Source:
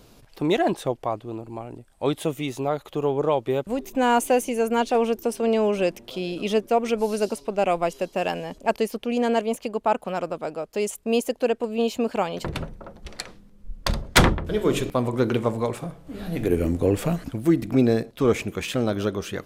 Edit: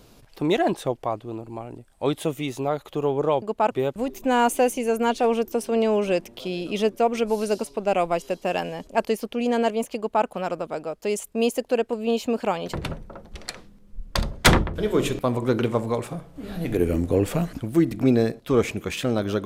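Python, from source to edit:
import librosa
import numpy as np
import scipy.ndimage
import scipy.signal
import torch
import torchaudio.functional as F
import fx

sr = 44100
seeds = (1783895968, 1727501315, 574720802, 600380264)

y = fx.edit(x, sr, fx.duplicate(start_s=9.68, length_s=0.29, to_s=3.42), tone=tone)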